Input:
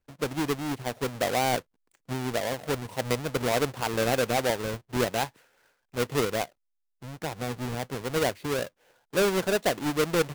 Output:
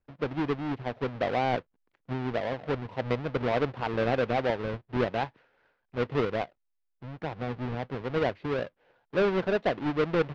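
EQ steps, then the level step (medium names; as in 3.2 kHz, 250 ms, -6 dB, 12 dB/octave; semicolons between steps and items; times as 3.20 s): low-pass 6.6 kHz 12 dB/octave; distance through air 310 m; 0.0 dB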